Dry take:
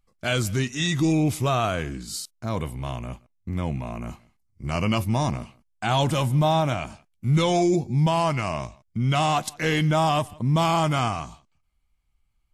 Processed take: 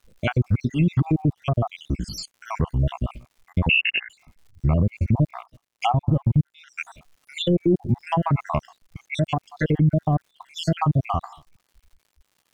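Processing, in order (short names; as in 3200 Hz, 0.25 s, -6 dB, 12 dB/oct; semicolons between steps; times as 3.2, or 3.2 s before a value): random spectral dropouts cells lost 71%; treble ducked by the level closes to 450 Hz, closed at -22 dBFS; low shelf 140 Hz +9.5 dB; crackle 180/s -56 dBFS; 5.37–6.82 transient shaper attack +4 dB, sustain -9 dB; limiter -17.5 dBFS, peak gain reduction 11 dB; 3.69–4.1 inverted band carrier 2800 Hz; gain +6.5 dB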